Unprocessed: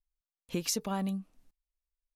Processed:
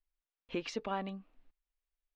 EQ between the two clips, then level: four-pole ladder low-pass 3.8 kHz, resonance 20%; peaking EQ 82 Hz -13 dB 0.65 oct; peaking EQ 180 Hz -10 dB 0.56 oct; +5.0 dB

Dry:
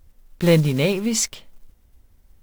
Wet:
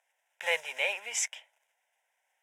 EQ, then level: high-pass 750 Hz 24 dB/octave; low-pass 6.7 kHz 12 dB/octave; static phaser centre 1.2 kHz, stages 6; 0.0 dB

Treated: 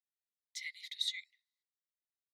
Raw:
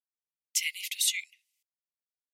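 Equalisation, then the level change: two resonant band-passes 2.7 kHz, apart 1 oct; -2.0 dB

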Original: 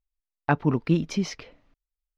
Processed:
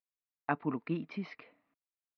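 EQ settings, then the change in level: distance through air 370 m; cabinet simulation 350–4600 Hz, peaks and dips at 380 Hz -9 dB, 540 Hz -10 dB, 860 Hz -6 dB, 1.5 kHz -5 dB, 3.2 kHz -8 dB; -1.5 dB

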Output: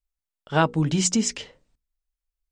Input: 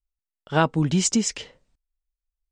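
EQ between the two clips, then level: hum notches 60/120/180/240/300/360/420/480 Hz; 0.0 dB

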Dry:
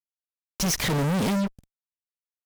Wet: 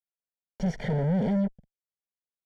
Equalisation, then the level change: Savitzky-Golay filter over 41 samples; distance through air 54 m; static phaser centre 310 Hz, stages 6; 0.0 dB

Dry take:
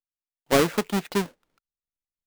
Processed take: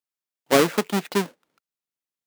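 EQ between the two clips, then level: high-pass 160 Hz 12 dB/octave; +2.5 dB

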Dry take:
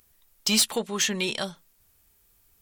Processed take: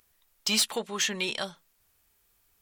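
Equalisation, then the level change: bass shelf 430 Hz -8 dB; treble shelf 5.1 kHz -6 dB; 0.0 dB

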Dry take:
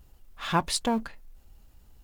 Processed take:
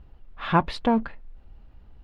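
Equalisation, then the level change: distance through air 370 m; +6.0 dB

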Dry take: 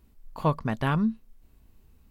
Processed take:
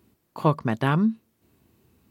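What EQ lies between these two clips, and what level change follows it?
high-pass 91 Hz 24 dB/octave; peaking EQ 350 Hz +6.5 dB 0.37 oct; +3.0 dB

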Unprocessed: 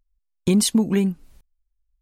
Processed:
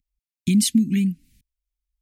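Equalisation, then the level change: high-pass 190 Hz 6 dB/octave; Chebyshev band-stop 270–2100 Hz, order 3; bass shelf 240 Hz +6.5 dB; 0.0 dB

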